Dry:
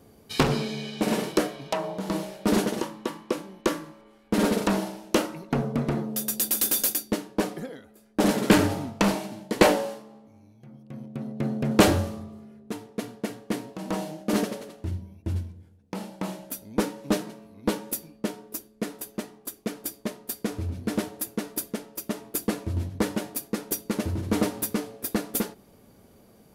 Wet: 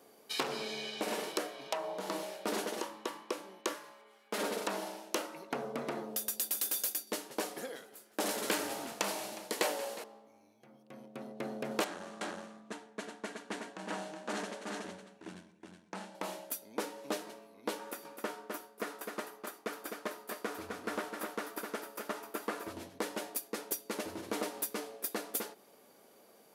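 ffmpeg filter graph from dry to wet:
-filter_complex "[0:a]asettb=1/sr,asplit=3[s0][s1][s2];[s0]atrim=end=3.744[s3];[s1]atrim=start=3.74:end=4.41,asetpts=PTS-STARTPTS,afade=t=in:d=0.004:c=qsin,afade=t=out:st=0.666:d=0.004:c=qsin,lowshelf=f=400:g=-9.5,aecho=1:1:4.8:0.49,atrim=end_sample=29547[s4];[s2]atrim=start=4.406[s5];[s3][s4]acrossfade=d=0.004:c1=hsin:c2=qsin[s6];[s6][s5]acrossfade=d=0.004:c1=qsin:c2=hsin,asettb=1/sr,asplit=3[s7][s8][s9];[s7]atrim=end=7.074[s10];[s8]atrim=start=7.07:end=10.04,asetpts=PTS-STARTPTS,afade=t=in:d=0.004:c=qsin,afade=t=out:st=2.966:d=0.004:c=qsin,highshelf=f=4700:g=8.5,asplit=5[s11][s12][s13][s14][s15];[s12]adelay=180,afreqshift=-69,volume=0.112[s16];[s13]adelay=360,afreqshift=-138,volume=0.055[s17];[s14]adelay=540,afreqshift=-207,volume=0.0269[s18];[s15]adelay=720,afreqshift=-276,volume=0.0132[s19];[s11][s16][s17][s18][s19]amix=inputs=5:normalize=0,atrim=end_sample=130977[s20];[s9]atrim=start=10.036[s21];[s10][s20]acrossfade=d=0.004:c1=hsin:c2=qsin[s22];[s22][s21]acrossfade=d=0.004:c1=qsin:c2=hsin,asettb=1/sr,asplit=3[s23][s24][s25];[s23]atrim=end=11.844[s26];[s24]atrim=start=11.84:end=16.15,asetpts=PTS-STARTPTS,afade=t=in:d=0.004:c=qsin,afade=t=out:st=4.306:d=0.004:c=qsin,aeval=exprs='(tanh(15.8*val(0)+0.65)-tanh(0.65))/15.8':c=same,highpass=130,equalizer=f=190:t=q:w=4:g=8,equalizer=f=500:t=q:w=4:g=-5,equalizer=f=1600:t=q:w=4:g=6,equalizer=f=5000:t=q:w=4:g=-4,lowpass=f=9100:w=0.5412,lowpass=f=9100:w=1.3066,aecho=1:1:370:0.562,atrim=end_sample=190071[s27];[s25]atrim=start=16.146[s28];[s26][s27]acrossfade=d=0.004:c1=hsin:c2=qsin[s29];[s29][s28]acrossfade=d=0.004:c1=qsin:c2=hsin,asettb=1/sr,asplit=3[s30][s31][s32];[s30]atrim=end=17.794[s33];[s31]atrim=start=17.79:end=22.73,asetpts=PTS-STARTPTS,afade=t=in:d=0.004:c=qsin,afade=t=out:st=4.936:d=0.004:c=qsin,acrossover=split=2800[s34][s35];[s35]acompressor=threshold=0.00794:ratio=4:attack=1:release=60[s36];[s34][s36]amix=inputs=2:normalize=0,equalizer=f=1300:w=1.4:g=7.5,aecho=1:1:256:0.422,atrim=end_sample=217854[s37];[s32]atrim=start=22.726[s38];[s33][s37]acrossfade=d=0.004:c1=hsin:c2=qsin[s39];[s39][s38]acrossfade=d=0.004:c1=qsin:c2=hsin,highpass=450,acompressor=threshold=0.02:ratio=2.5,volume=0.891"

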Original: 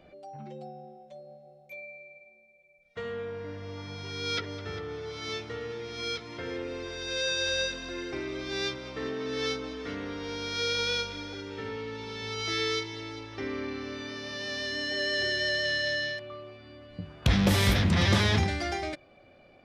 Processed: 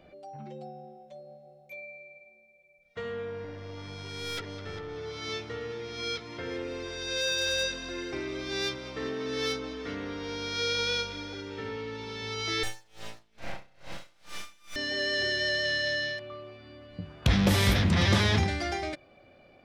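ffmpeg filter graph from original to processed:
-filter_complex "[0:a]asettb=1/sr,asplit=3[s0][s1][s2];[s0]atrim=end=3.444[s3];[s1]atrim=start=3.44:end=4.96,asetpts=PTS-STARTPTS,afade=t=in:d=0.004:c=qsin,afade=t=out:st=1.516:d=0.004:c=qsin,acompressor=mode=upward:threshold=0.0178:ratio=2.5:attack=3.2:release=140:knee=2.83:detection=peak,aeval=exprs='(tanh(31.6*val(0)+0.45)-tanh(0.45))/31.6':c=same[s4];[s2]atrim=start=4.956[s5];[s3][s4]acrossfade=d=0.004:c1=hsin:c2=qsin[s6];[s6][s5]acrossfade=d=0.004:c1=qsin:c2=hsin,asettb=1/sr,asplit=3[s7][s8][s9];[s7]atrim=end=6.514[s10];[s8]atrim=start=6.51:end=9.59,asetpts=PTS-STARTPTS,afade=t=in:d=0.004:c=qsin,afade=t=out:st=3.076:d=0.004:c=qsin,highshelf=f=9200:g=8,asoftclip=type=hard:threshold=0.0668[s11];[s9]atrim=start=9.586[s12];[s10][s11]acrossfade=d=0.004:c1=hsin:c2=qsin[s13];[s13][s12]acrossfade=d=0.004:c1=qsin:c2=hsin,asettb=1/sr,asplit=3[s14][s15][s16];[s14]atrim=end=12.634[s17];[s15]atrim=start=12.63:end=14.76,asetpts=PTS-STARTPTS,afade=t=in:d=0.004:c=qsin,afade=t=out:st=2.126:d=0.004:c=qsin,aeval=exprs='abs(val(0))':c=same,asplit=2[s18][s19];[s19]adelay=36,volume=0.562[s20];[s18][s20]amix=inputs=2:normalize=0,atrim=end_sample=93933,aeval=exprs='val(0)*pow(10,-28*(0.5-0.5*cos(2*PI*2.3*n/s))/20)':c=same[s21];[s16]atrim=start=14.756[s22];[s17][s21]acrossfade=d=0.004:c1=hsin:c2=qsin[s23];[s23][s22]acrossfade=d=0.004:c1=qsin:c2=hsin"

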